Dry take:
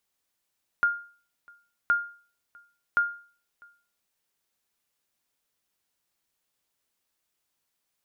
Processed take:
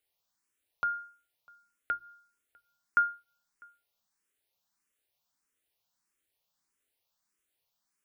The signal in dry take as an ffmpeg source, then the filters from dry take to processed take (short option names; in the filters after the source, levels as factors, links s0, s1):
-f lavfi -i "aevalsrc='0.168*(sin(2*PI*1410*mod(t,1.07))*exp(-6.91*mod(t,1.07)/0.42)+0.0355*sin(2*PI*1410*max(mod(t,1.07)-0.65,0))*exp(-6.91*max(mod(t,1.07)-0.65,0)/0.42))':d=3.21:s=44100"
-filter_complex "[0:a]bandreject=f=60:t=h:w=6,bandreject=f=120:t=h:w=6,bandreject=f=180:t=h:w=6,bandreject=f=240:t=h:w=6,bandreject=f=300:t=h:w=6,bandreject=f=360:t=h:w=6,asplit=2[s0][s1];[s1]afreqshift=1.6[s2];[s0][s2]amix=inputs=2:normalize=1"